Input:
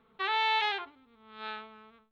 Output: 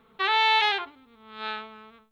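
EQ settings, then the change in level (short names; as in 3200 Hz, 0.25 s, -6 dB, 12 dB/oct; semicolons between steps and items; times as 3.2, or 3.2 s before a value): high shelf 4900 Hz +5.5 dB; +6.0 dB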